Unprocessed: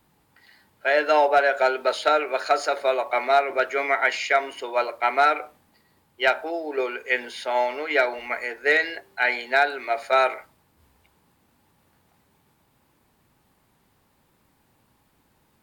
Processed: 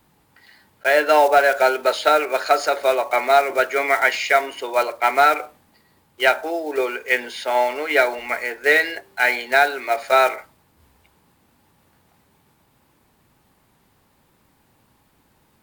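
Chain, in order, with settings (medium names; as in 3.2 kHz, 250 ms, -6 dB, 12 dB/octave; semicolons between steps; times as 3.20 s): block-companded coder 5-bit; trim +4 dB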